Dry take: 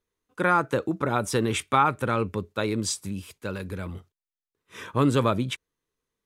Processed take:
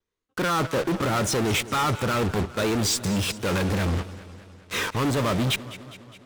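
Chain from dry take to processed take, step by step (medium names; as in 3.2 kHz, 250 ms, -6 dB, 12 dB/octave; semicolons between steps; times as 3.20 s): reverse; compression 5:1, threshold -32 dBFS, peak gain reduction 15 dB; reverse; distance through air 100 m; wow and flutter 81 cents; treble shelf 4.1 kHz +8 dB; in parallel at -9.5 dB: fuzz box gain 54 dB, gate -53 dBFS; on the sum: modulated delay 205 ms, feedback 61%, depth 101 cents, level -16 dB; trim -1.5 dB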